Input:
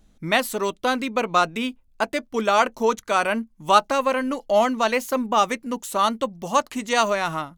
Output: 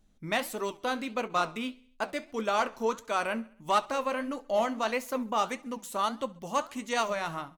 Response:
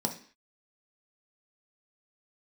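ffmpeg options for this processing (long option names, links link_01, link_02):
-filter_complex "[0:a]flanger=delay=7.9:depth=6.3:regen=-70:speed=1.6:shape=sinusoidal,asplit=2[link_01][link_02];[link_02]aeval=exprs='0.188*(abs(mod(val(0)/0.188+3,4)-2)-1)':channel_layout=same,volume=-4.5dB[link_03];[link_01][link_03]amix=inputs=2:normalize=0,aecho=1:1:67|134|201|268:0.0708|0.0389|0.0214|0.0118,volume=-8.5dB"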